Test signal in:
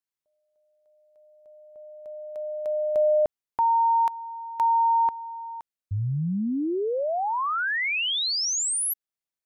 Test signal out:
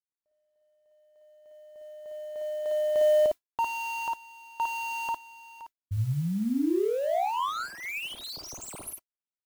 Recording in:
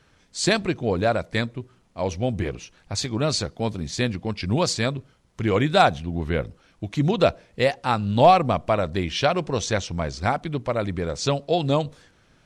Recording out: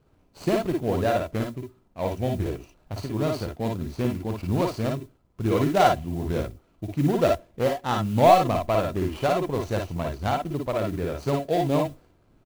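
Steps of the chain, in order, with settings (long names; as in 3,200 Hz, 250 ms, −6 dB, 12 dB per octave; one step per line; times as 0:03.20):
running median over 25 samples
noise that follows the level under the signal 27 dB
multi-tap delay 54/57 ms −5/−4.5 dB
level −2.5 dB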